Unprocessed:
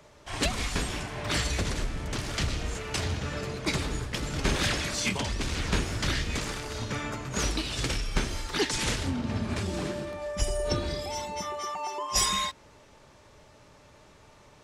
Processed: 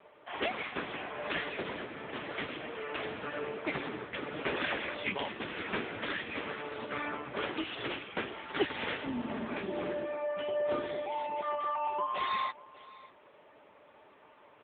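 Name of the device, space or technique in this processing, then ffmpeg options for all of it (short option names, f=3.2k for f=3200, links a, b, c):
satellite phone: -filter_complex "[0:a]asplit=3[a][b][c];[a]afade=t=out:st=7.41:d=0.02[d];[b]asplit=2[e][f];[f]adelay=25,volume=-8dB[g];[e][g]amix=inputs=2:normalize=0,afade=t=in:st=7.41:d=0.02,afade=t=out:st=8.05:d=0.02[h];[c]afade=t=in:st=8.05:d=0.02[i];[d][h][i]amix=inputs=3:normalize=0,highpass=310,lowpass=3.2k,aecho=1:1:589:0.0891,volume=2dB" -ar 8000 -c:a libopencore_amrnb -b:a 6700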